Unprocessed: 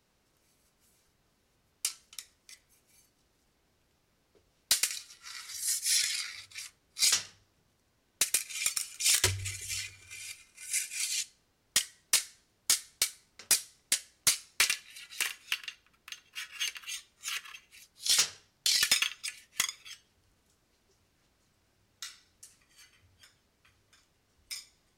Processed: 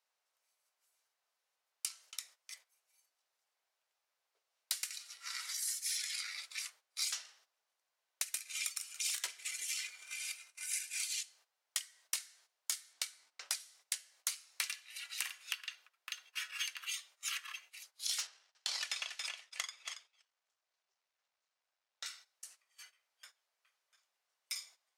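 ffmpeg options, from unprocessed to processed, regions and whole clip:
ffmpeg -i in.wav -filter_complex "[0:a]asettb=1/sr,asplit=3[link_01][link_02][link_03];[link_01]atrim=end=12.934[link_04];[link_02]atrim=start=12.93:end=13.6,asetpts=PTS-STARTPTS,afade=type=in:duration=0.004:curve=qsin,afade=type=out:start_time=0.666:duration=0.004:curve=qsin,highshelf=frequency=11000:gain=-11,aeval=exprs='val(0)+0.00112*(sin(2*PI*60*n/s)+sin(2*PI*2*60*n/s)/2+sin(2*PI*3*60*n/s)/3+sin(2*PI*4*60*n/s)/4+sin(2*PI*5*60*n/s)/5)':channel_layout=same[link_05];[link_03]atrim=start=13.596[link_06];[link_04][link_05]acrossfade=duration=0.004:curve1=hsin:curve2=qsin[link_07];[link_07][link_06]acrossfade=duration=0.004:curve1=qsin:curve2=hsin,asettb=1/sr,asplit=3[link_08][link_09][link_10];[link_08]atrim=end=18.274[link_11];[link_09]atrim=start=18.27:end=22.06,asetpts=PTS-STARTPTS,afade=type=in:duration=0.004:curve=qsin,afade=type=out:start_time=3.786:duration=0.004:curve=qsin,aeval=exprs='if(lt(val(0),0),0.251*val(0),val(0))':channel_layout=same,highpass=140,lowpass=7000,aecho=1:1:278:0.251,atrim=end_sample=167139[link_12];[link_10]atrim=start=22.056[link_13];[link_11][link_12]acrossfade=duration=0.004:curve1=hsin:curve2=qsin[link_14];[link_14][link_13]acrossfade=duration=0.004:curve1=qsin:curve2=hsin,highpass=frequency=620:width=0.5412,highpass=frequency=620:width=1.3066,agate=range=-13dB:threshold=-59dB:ratio=16:detection=peak,acompressor=threshold=-38dB:ratio=6,volume=2dB" out.wav

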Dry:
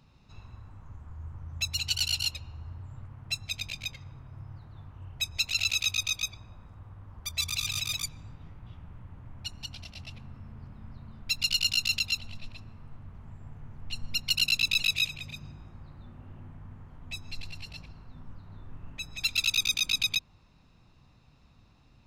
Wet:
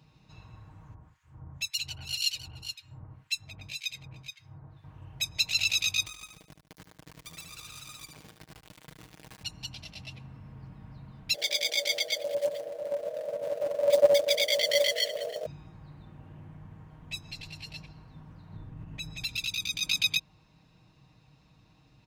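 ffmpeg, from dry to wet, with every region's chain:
ffmpeg -i in.wav -filter_complex "[0:a]asettb=1/sr,asplit=3[link_01][link_02][link_03];[link_01]atrim=end=0.944[link_04];[link_02]atrim=start=0.94:end=4.84,asetpts=PTS-STARTPTS,afade=type=in:duration=0.004:curve=qsin,afade=type=out:start_time=3.896:duration=0.004:curve=qsin,aecho=1:1:426:0.447,atrim=end_sample=171990,acrossover=split=1600[link_05][link_06];[link_05]aeval=exprs='val(0)*(1-1/2+1/2*cos(2*PI*1.9*n/s))':channel_layout=same[link_07];[link_06]aeval=exprs='val(0)*(1-1/2-1/2*cos(2*PI*1.9*n/s))':channel_layout=same[link_08];[link_07][link_08]amix=inputs=2:normalize=0[link_09];[link_03]atrim=start=4.836[link_10];[link_04][link_09]acrossfade=duration=0.004:curve1=hsin:curve2=qsin[link_11];[link_11][link_10]acrossfade=duration=0.004:curve1=qsin:curve2=hsin,asettb=1/sr,asplit=3[link_12][link_13][link_14];[link_12]atrim=end=6.064[link_15];[link_13]atrim=start=6.06:end=9.43,asetpts=PTS-STARTPTS,afade=type=in:duration=0.004:curve=qsin,afade=type=out:start_time=3.366:duration=0.004:curve=qsin,acrusher=bits=4:dc=4:mix=0:aa=0.000001,acrossover=split=1400|5800[link_16][link_17][link_18];[link_16]acompressor=threshold=-47dB:ratio=4[link_19];[link_17]acompressor=threshold=-50dB:ratio=4[link_20];[link_18]acompressor=threshold=-52dB:ratio=4[link_21];[link_19][link_20][link_21]amix=inputs=3:normalize=0,aecho=1:1:74|148|222|296:0.447|0.165|0.0612|0.0226,atrim=end_sample=148617[link_22];[link_14]atrim=start=9.426[link_23];[link_15][link_22]acrossfade=duration=0.004:curve1=hsin:curve2=qsin[link_24];[link_24][link_23]acrossfade=duration=0.004:curve1=qsin:curve2=hsin,asettb=1/sr,asplit=3[link_25][link_26][link_27];[link_25]atrim=end=11.344[link_28];[link_26]atrim=start=11.34:end=15.46,asetpts=PTS-STARTPTS,afade=type=in:duration=0.004:curve=qsin,afade=type=out:start_time=4.116:duration=0.004:curve=qsin,asubboost=boost=11:cutoff=73,acrusher=bits=4:mode=log:mix=0:aa=0.000001,aeval=exprs='val(0)*sin(2*PI*570*n/s)':channel_layout=same[link_29];[link_27]atrim=start=15.456[link_30];[link_28][link_29]acrossfade=duration=0.004:curve1=hsin:curve2=qsin[link_31];[link_31][link_30]acrossfade=duration=0.004:curve1=qsin:curve2=hsin,asettb=1/sr,asplit=3[link_32][link_33][link_34];[link_32]atrim=end=18.534[link_35];[link_33]atrim=start=18.53:end=19.83,asetpts=PTS-STARTPTS,afade=type=in:duration=0.004:curve=qsin,afade=type=out:start_time=1.296:duration=0.004:curve=qsin,lowshelf=frequency=280:gain=8.5,acompressor=threshold=-34dB:ratio=2:attack=3.2:release=140:knee=1:detection=peak[link_36];[link_34]atrim=start=19.826[link_37];[link_35][link_36]acrossfade=duration=0.004:curve1=hsin:curve2=qsin[link_38];[link_38][link_37]acrossfade=duration=0.004:curve1=qsin:curve2=hsin,highpass=56,equalizer=frequency=1300:width_type=o:width=0.25:gain=-5.5,aecho=1:1:6.4:0.55" out.wav

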